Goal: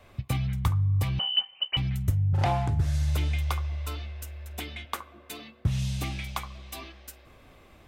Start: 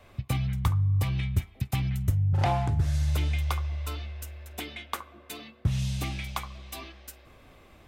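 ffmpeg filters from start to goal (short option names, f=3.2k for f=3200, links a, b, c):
-filter_complex "[0:a]asettb=1/sr,asplit=3[a][b][c];[a]atrim=end=1.194[d];[b]atrim=start=1.19:end=1.77,asetpts=PTS-STARTPTS,afade=t=in:d=0.004:c=qsin,afade=t=out:st=0.576:d=0.004:c=qsin,lowpass=f=2.6k:t=q:w=0.5098,lowpass=f=2.6k:t=q:w=0.6013,lowpass=f=2.6k:t=q:w=0.9,lowpass=f=2.6k:t=q:w=2.563,afreqshift=-3100[e];[c]atrim=start=1.766[f];[d][e]acrossfade=d=0.004:c1=hsin:c2=qsin[g];[g][f]acrossfade=d=0.004:c1=qsin:c2=hsin,asettb=1/sr,asplit=3[h][i][j];[h]atrim=end=4.254[k];[i]atrim=start=4.25:end=4.85,asetpts=PTS-STARTPTS,afade=t=in:d=0.004:c=qsin,afade=t=out:st=0.596:d=0.004:c=qsin,asubboost=boost=10.5:cutoff=170[l];[j]atrim=start=4.846[m];[k][l]acrossfade=d=0.004:c1=hsin:c2=qsin[n];[n][m]acrossfade=d=0.004:c1=qsin:c2=hsin"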